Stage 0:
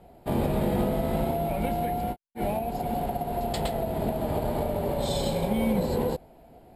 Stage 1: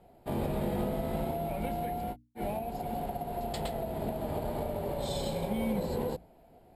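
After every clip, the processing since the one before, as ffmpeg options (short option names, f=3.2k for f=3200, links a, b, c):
-af "bandreject=f=60:t=h:w=6,bandreject=f=120:t=h:w=6,bandreject=f=180:t=h:w=6,bandreject=f=240:t=h:w=6,bandreject=f=300:t=h:w=6,volume=-6dB"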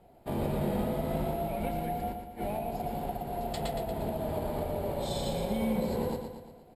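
-af "aecho=1:1:117|234|351|468|585|702|819:0.447|0.241|0.13|0.0703|0.038|0.0205|0.0111"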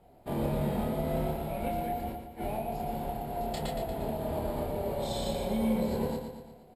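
-filter_complex "[0:a]asplit=2[a][b];[b]adelay=27,volume=-4dB[c];[a][c]amix=inputs=2:normalize=0,volume=-1.5dB"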